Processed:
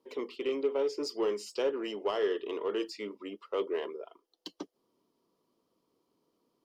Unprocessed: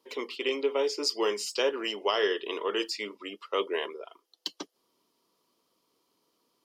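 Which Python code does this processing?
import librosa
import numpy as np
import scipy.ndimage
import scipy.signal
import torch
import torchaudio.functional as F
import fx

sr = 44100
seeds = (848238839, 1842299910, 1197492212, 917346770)

p1 = fx.tilt_shelf(x, sr, db=7.0, hz=910.0)
p2 = 10.0 ** (-28.5 / 20.0) * np.tanh(p1 / 10.0 ** (-28.5 / 20.0))
p3 = p1 + (p2 * 10.0 ** (-4.0 / 20.0))
y = p3 * 10.0 ** (-8.0 / 20.0)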